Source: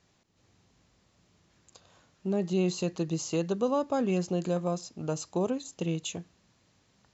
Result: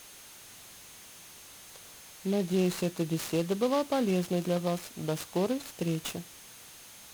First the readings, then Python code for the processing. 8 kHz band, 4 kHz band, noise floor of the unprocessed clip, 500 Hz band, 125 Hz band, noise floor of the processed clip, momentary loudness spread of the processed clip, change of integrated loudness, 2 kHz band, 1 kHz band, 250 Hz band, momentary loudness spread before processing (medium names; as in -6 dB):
no reading, +2.5 dB, -69 dBFS, 0.0 dB, 0.0 dB, -51 dBFS, 19 LU, 0.0 dB, +3.0 dB, 0.0 dB, 0.0 dB, 7 LU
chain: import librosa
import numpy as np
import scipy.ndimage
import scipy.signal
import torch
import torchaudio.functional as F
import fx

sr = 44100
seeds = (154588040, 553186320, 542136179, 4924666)

y = x + 10.0 ** (-47.0 / 20.0) * np.sin(2.0 * np.pi * 6400.0 * np.arange(len(x)) / sr)
y = fx.noise_mod_delay(y, sr, seeds[0], noise_hz=3000.0, depth_ms=0.039)